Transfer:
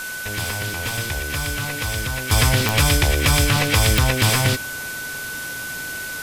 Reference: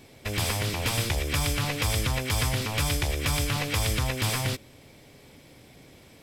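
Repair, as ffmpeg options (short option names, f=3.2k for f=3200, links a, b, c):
-af "adeclick=t=4,bandreject=f=1.5k:w=30,afwtdn=0.022,asetnsamples=n=441:p=0,asendcmd='2.31 volume volume -9.5dB',volume=0dB"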